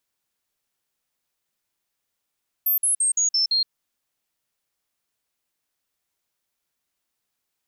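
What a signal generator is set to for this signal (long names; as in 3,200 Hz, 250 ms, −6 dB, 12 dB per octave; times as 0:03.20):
stepped sweep 13,400 Hz down, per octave 3, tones 6, 0.12 s, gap 0.05 s −17.5 dBFS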